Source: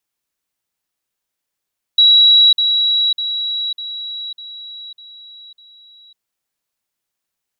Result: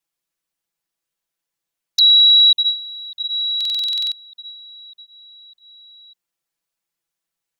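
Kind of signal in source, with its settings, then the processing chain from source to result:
level ladder 3.89 kHz -6 dBFS, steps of -6 dB, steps 7, 0.55 s 0.05 s
touch-sensitive flanger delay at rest 6 ms, full sweep at -9 dBFS; buffer glitch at 3.56 s, samples 2048, times 11

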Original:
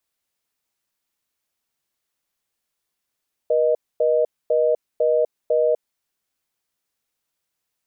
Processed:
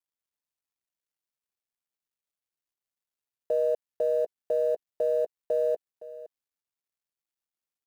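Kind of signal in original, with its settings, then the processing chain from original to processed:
call progress tone reorder tone, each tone -18 dBFS 2.46 s
companding laws mixed up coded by A; peak limiter -18.5 dBFS; delay 514 ms -17 dB

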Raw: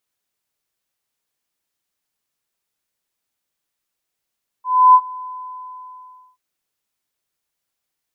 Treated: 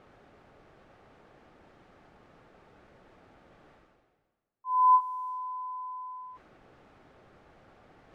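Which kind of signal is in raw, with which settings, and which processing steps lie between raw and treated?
ADSR sine 1.01 kHz, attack 303 ms, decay 59 ms, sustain -23.5 dB, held 0.60 s, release 1130 ms -4 dBFS
band-stop 990 Hz, Q 7.9; level-controlled noise filter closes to 960 Hz, open at -31 dBFS; reverse; upward compressor, threshold -30 dBFS; reverse

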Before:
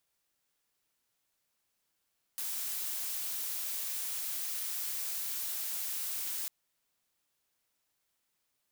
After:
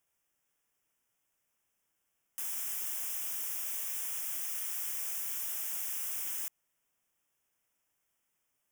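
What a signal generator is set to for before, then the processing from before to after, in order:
noise blue, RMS -36.5 dBFS 4.10 s
Butterworth band-stop 4.2 kHz, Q 2.1

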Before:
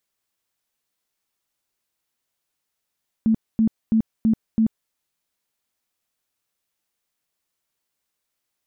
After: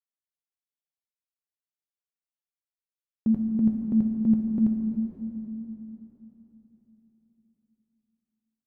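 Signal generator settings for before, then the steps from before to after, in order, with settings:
tone bursts 222 Hz, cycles 19, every 0.33 s, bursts 5, -14 dBFS
gate with hold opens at -17 dBFS; flange 0.42 Hz, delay 2.1 ms, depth 9.4 ms, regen -71%; plate-style reverb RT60 4.1 s, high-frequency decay 0.95×, DRR 2 dB

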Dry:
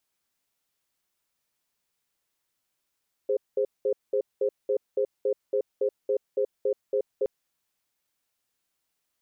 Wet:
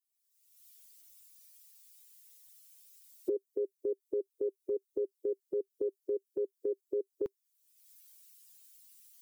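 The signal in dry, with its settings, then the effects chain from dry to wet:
cadence 412 Hz, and 524 Hz, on 0.08 s, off 0.20 s, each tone -24.5 dBFS 3.97 s
expander on every frequency bin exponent 2; recorder AGC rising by 46 dB/s; FFT filter 390 Hz 0 dB, 580 Hz -21 dB, 980 Hz -1 dB

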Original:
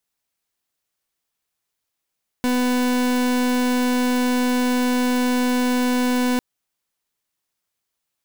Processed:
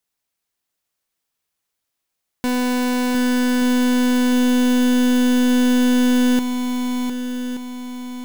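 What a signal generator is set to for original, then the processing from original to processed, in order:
pulse 249 Hz, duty 39% -19.5 dBFS 3.95 s
shuffle delay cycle 1177 ms, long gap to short 1.5:1, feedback 38%, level -7 dB

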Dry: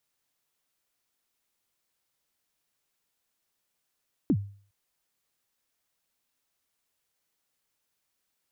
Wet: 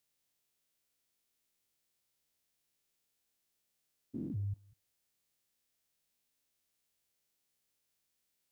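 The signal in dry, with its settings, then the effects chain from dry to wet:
kick drum length 0.41 s, from 340 Hz, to 100 Hz, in 62 ms, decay 0.45 s, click off, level -17 dB
spectrogram pixelated in time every 200 ms; peaking EQ 1.1 kHz -6.5 dB 1.7 oct; repeats whose band climbs or falls 131 ms, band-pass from 590 Hz, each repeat 0.7 oct, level -10 dB

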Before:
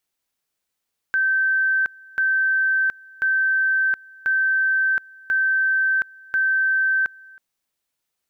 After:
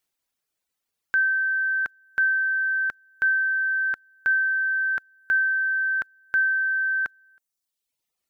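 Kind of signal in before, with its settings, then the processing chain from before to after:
two-level tone 1.55 kHz -16.5 dBFS, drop 25.5 dB, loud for 0.72 s, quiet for 0.32 s, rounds 6
reverb removal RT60 1.1 s

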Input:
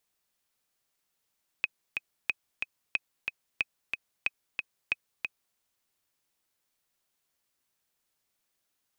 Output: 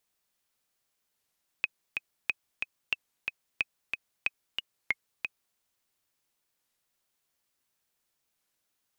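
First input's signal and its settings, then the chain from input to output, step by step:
metronome 183 bpm, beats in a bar 2, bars 6, 2.53 kHz, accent 4.5 dB -13 dBFS
warped record 33 1/3 rpm, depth 250 cents

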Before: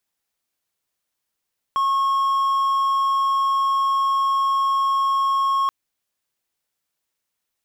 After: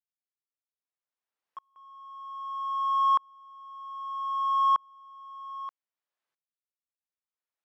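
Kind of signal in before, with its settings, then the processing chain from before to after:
tone triangle 1.09 kHz -15 dBFS 3.93 s
band-pass filter 1 kHz, Q 0.66; reverse echo 192 ms -17 dB; sawtooth tremolo in dB swelling 0.63 Hz, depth 37 dB

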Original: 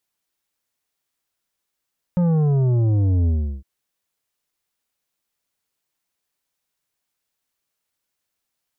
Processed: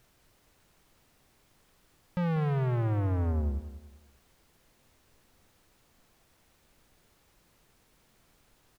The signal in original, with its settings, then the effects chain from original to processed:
sub drop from 180 Hz, over 1.46 s, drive 9 dB, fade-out 0.36 s, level -16 dB
saturation -27.5 dBFS; added noise pink -66 dBFS; feedback delay 193 ms, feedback 34%, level -13 dB

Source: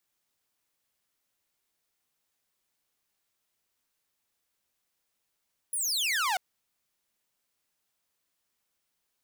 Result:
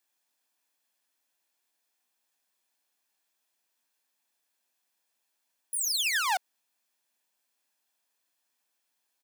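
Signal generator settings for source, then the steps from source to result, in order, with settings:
laser zap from 11 kHz, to 700 Hz, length 0.64 s saw, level -23 dB
high-pass 230 Hz 24 dB/octave; comb 1.2 ms, depth 36%

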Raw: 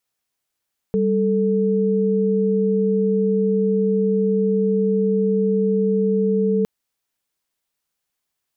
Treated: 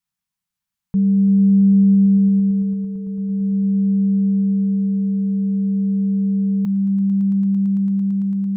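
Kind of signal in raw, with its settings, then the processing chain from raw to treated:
chord G3/A4 sine, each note -18.5 dBFS 5.71 s
FFT filter 120 Hz 0 dB, 190 Hz +8 dB, 320 Hz -21 dB, 500 Hz -21 dB, 940 Hz -4 dB, 1.5 kHz -6 dB; on a send: echo with a slow build-up 112 ms, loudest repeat 8, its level -13 dB

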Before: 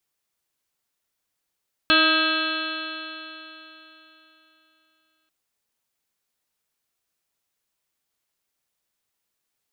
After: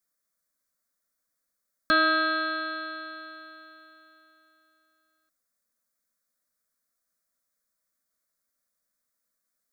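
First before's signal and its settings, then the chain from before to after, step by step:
stretched partials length 3.39 s, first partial 314 Hz, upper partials -3.5/-14/2/3.5/-15/-12/2/-2/1/-7.5/1 dB, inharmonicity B 0.0016, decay 3.51 s, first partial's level -23 dB
static phaser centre 570 Hz, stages 8

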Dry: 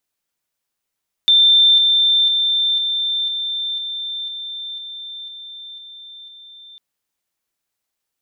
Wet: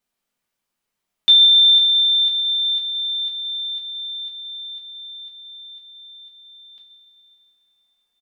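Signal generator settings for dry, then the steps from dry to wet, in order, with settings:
level ladder 3.57 kHz -8.5 dBFS, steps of -3 dB, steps 11, 0.50 s 0.00 s
treble shelf 3.4 kHz -7 dB; delay 123 ms -19 dB; two-slope reverb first 0.23 s, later 3.6 s, from -18 dB, DRR -1.5 dB

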